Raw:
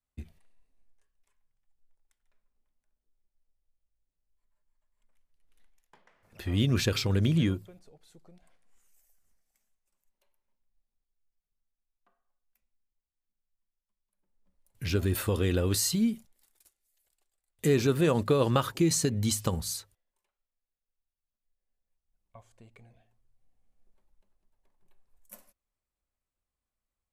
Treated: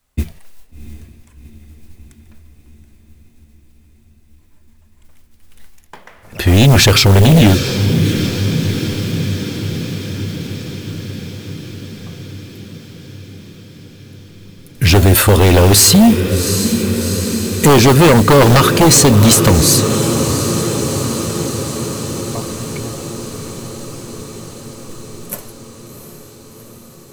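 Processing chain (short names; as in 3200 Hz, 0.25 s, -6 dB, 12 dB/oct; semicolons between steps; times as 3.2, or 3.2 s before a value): in parallel at -2 dB: limiter -20.5 dBFS, peak gain reduction 9 dB; on the sum: modulation noise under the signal 22 dB; diffused feedback echo 0.731 s, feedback 71%, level -11.5 dB; sine folder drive 10 dB, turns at -8.5 dBFS; gain +4.5 dB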